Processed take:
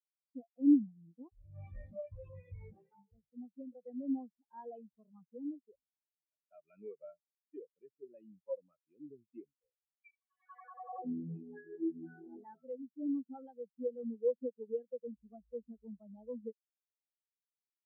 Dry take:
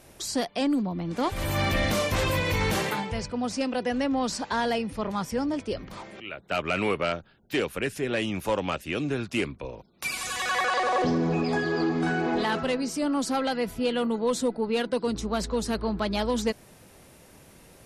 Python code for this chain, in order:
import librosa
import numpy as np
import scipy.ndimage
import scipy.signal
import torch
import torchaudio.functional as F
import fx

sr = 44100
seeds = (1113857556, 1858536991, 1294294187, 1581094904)

y = fx.spectral_expand(x, sr, expansion=4.0)
y = y * 10.0 ** (-2.0 / 20.0)